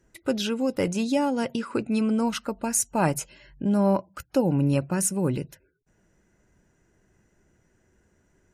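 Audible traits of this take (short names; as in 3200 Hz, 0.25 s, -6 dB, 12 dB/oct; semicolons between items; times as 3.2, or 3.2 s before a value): noise floor -68 dBFS; spectral tilt -5.0 dB/oct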